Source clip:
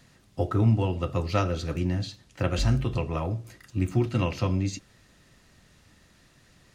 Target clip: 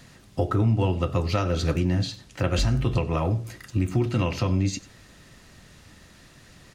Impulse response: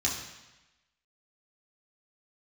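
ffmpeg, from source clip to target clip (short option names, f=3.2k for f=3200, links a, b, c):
-af "aecho=1:1:95:0.0944,alimiter=limit=-21dB:level=0:latency=1:release=272,volume=7.5dB"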